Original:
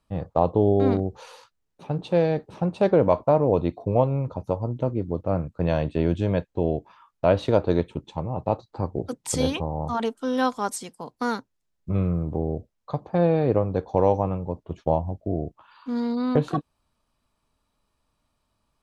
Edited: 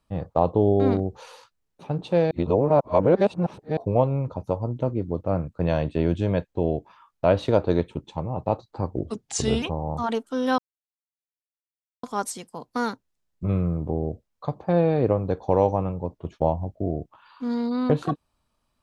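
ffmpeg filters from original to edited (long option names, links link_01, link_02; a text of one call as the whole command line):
ffmpeg -i in.wav -filter_complex "[0:a]asplit=6[link_01][link_02][link_03][link_04][link_05][link_06];[link_01]atrim=end=2.312[link_07];[link_02]atrim=start=2.308:end=3.772,asetpts=PTS-STARTPTS,areverse[link_08];[link_03]atrim=start=3.768:end=8.964[link_09];[link_04]atrim=start=8.96:end=9.53,asetpts=PTS-STARTPTS,asetrate=37926,aresample=44100,atrim=end_sample=29229,asetpts=PTS-STARTPTS[link_10];[link_05]atrim=start=9.526:end=10.49,asetpts=PTS-STARTPTS,afade=type=out:start_time=0.96:duration=0.004:curve=hsin,apad=pad_dur=1.45[link_11];[link_06]atrim=start=10.49,asetpts=PTS-STARTPTS,afade=type=in:duration=0.004:curve=hsin[link_12];[link_07][link_08]acrossfade=duration=0.004:curve1=hsin:curve2=hsin[link_13];[link_13][link_09]acrossfade=duration=0.004:curve1=hsin:curve2=hsin[link_14];[link_14][link_10]acrossfade=duration=0.004:curve1=hsin:curve2=hsin[link_15];[link_11][link_12]concat=n=2:v=0:a=1[link_16];[link_15][link_16]acrossfade=duration=0.004:curve1=hsin:curve2=hsin" out.wav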